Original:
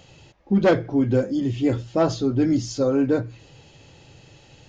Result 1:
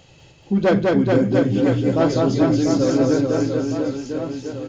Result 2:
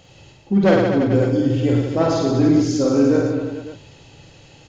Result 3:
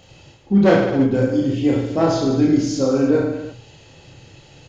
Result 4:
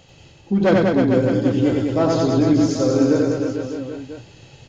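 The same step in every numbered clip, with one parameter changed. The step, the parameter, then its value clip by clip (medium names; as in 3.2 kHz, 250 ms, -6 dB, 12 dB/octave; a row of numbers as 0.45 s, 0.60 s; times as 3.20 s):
reverse bouncing-ball echo, first gap: 200 ms, 50 ms, 30 ms, 90 ms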